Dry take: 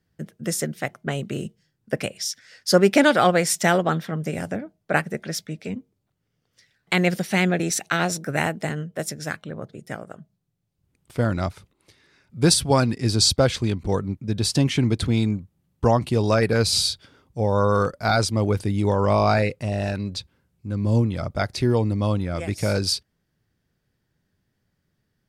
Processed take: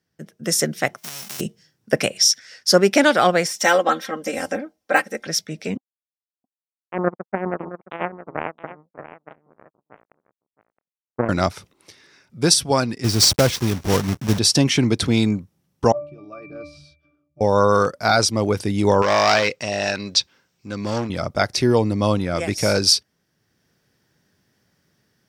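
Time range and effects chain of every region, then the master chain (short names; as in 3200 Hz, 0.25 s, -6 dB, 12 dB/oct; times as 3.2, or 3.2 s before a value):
0.97–1.39 spectral whitening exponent 0.1 + compressor, threshold -39 dBFS
3.46–5.27 de-esser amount 50% + bell 160 Hz -13.5 dB 0.88 oct + comb 3.8 ms, depth 87%
5.77–11.29 steep low-pass 1200 Hz 72 dB/oct + power-law curve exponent 3 + echo 0.668 s -14.5 dB
13.04–14.39 block floating point 3-bit + low shelf 190 Hz +10.5 dB
15.92–17.41 low shelf 130 Hz -5 dB + octave resonator D, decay 0.38 s
19.02–21.1 hard clip -17 dBFS + running mean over 4 samples + tilt +3 dB/oct
whole clip: HPF 230 Hz 6 dB/oct; bell 5600 Hz +8.5 dB 0.21 oct; AGC; gain -1 dB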